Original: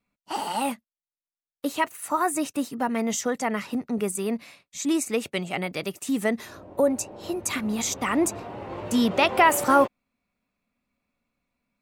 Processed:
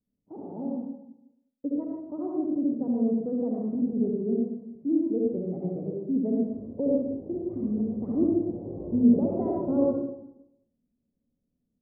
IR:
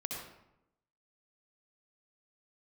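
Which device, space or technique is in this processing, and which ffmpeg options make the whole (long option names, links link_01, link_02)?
next room: -filter_complex "[0:a]lowpass=frequency=460:width=0.5412,lowpass=frequency=460:width=1.3066[link_01];[1:a]atrim=start_sample=2205[link_02];[link_01][link_02]afir=irnorm=-1:irlink=0"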